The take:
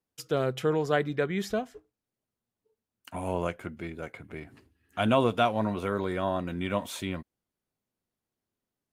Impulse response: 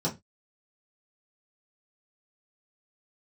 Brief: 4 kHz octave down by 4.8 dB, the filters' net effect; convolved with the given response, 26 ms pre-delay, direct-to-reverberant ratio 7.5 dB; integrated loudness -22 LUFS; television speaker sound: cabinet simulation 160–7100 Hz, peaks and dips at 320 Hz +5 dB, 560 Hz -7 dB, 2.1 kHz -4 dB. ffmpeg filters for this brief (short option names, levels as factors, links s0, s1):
-filter_complex "[0:a]equalizer=f=4000:t=o:g=-6,asplit=2[s0][s1];[1:a]atrim=start_sample=2205,adelay=26[s2];[s1][s2]afir=irnorm=-1:irlink=0,volume=0.178[s3];[s0][s3]amix=inputs=2:normalize=0,highpass=f=160:w=0.5412,highpass=f=160:w=1.3066,equalizer=f=320:t=q:w=4:g=5,equalizer=f=560:t=q:w=4:g=-7,equalizer=f=2100:t=q:w=4:g=-4,lowpass=f=7100:w=0.5412,lowpass=f=7100:w=1.3066,volume=2.11"